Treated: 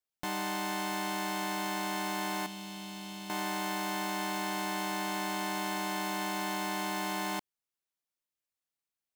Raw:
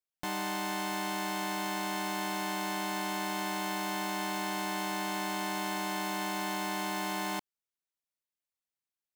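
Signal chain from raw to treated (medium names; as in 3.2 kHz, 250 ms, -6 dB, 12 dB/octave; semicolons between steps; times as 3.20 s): 2.46–3.30 s: FFT filter 170 Hz 0 dB, 320 Hz -11 dB, 1.8 kHz -15 dB, 2.9 kHz -4 dB, 16 kHz -11 dB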